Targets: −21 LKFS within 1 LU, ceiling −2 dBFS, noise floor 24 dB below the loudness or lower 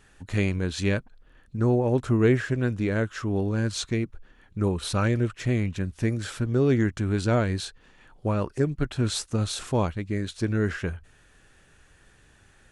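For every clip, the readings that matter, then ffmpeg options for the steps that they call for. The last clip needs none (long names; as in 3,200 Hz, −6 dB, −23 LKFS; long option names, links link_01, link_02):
integrated loudness −26.5 LKFS; sample peak −9.5 dBFS; target loudness −21.0 LKFS
→ -af "volume=5.5dB"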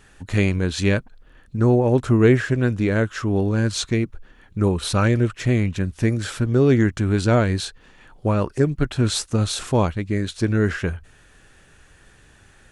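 integrated loudness −21.0 LKFS; sample peak −4.0 dBFS; background noise floor −53 dBFS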